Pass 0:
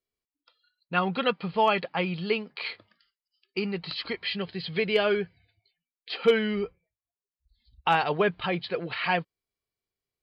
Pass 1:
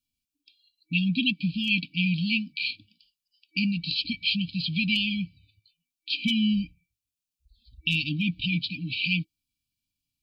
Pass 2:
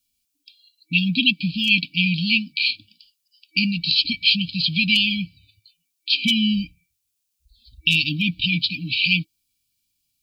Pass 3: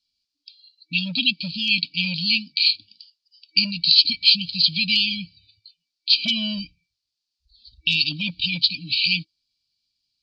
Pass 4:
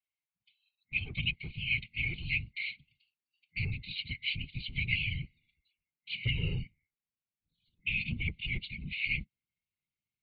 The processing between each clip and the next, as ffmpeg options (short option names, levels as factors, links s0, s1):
-af "afftfilt=real='re*(1-between(b*sr/4096,320,2300))':imag='im*(1-between(b*sr/4096,320,2300))':win_size=4096:overlap=0.75,volume=2.11"
-af "highshelf=f=3000:g=11,volume=1.41"
-filter_complex "[0:a]acrossover=split=1100[s0][s1];[s0]volume=9.44,asoftclip=hard,volume=0.106[s2];[s1]lowpass=f=4600:t=q:w=5.6[s3];[s2][s3]amix=inputs=2:normalize=0,volume=0.447"
-af "afftfilt=real='hypot(re,im)*cos(2*PI*random(0))':imag='hypot(re,im)*sin(2*PI*random(1))':win_size=512:overlap=0.75,highpass=f=360:t=q:w=0.5412,highpass=f=360:t=q:w=1.307,lowpass=f=2700:t=q:w=0.5176,lowpass=f=2700:t=q:w=0.7071,lowpass=f=2700:t=q:w=1.932,afreqshift=-180,asubboost=boost=8.5:cutoff=240"